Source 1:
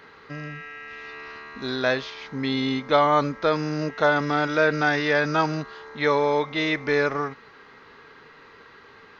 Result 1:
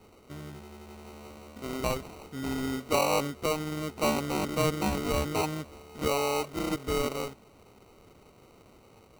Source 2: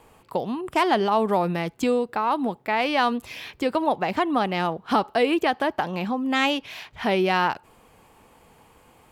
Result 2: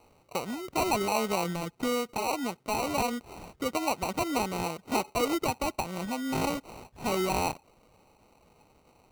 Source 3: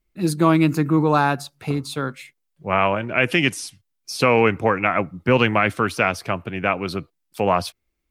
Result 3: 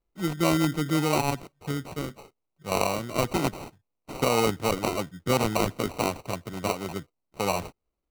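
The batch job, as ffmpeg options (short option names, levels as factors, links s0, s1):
-af "acrusher=samples=26:mix=1:aa=0.000001,volume=0.447"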